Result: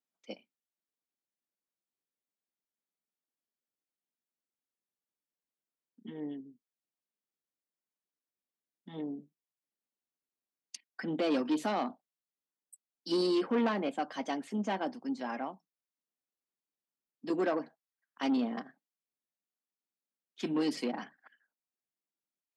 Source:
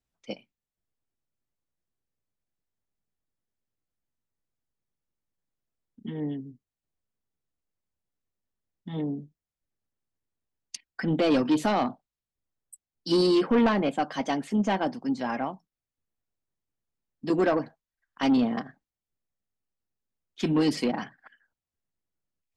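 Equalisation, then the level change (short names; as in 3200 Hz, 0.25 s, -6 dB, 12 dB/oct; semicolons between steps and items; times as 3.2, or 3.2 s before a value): HPF 200 Hz 24 dB/oct; -7.0 dB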